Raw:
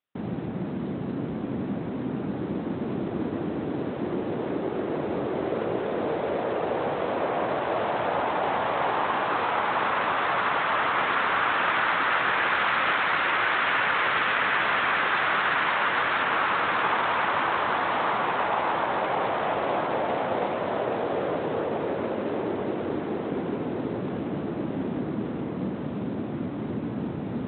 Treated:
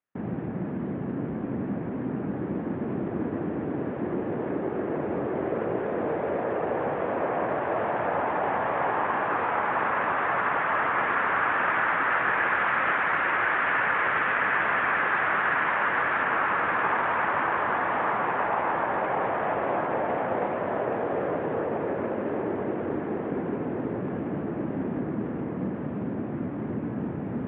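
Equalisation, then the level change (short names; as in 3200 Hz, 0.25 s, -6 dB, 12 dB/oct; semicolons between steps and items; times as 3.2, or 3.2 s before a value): LPF 2500 Hz 24 dB/oct; air absorption 180 m; bell 1700 Hz +4 dB 0.2 oct; 0.0 dB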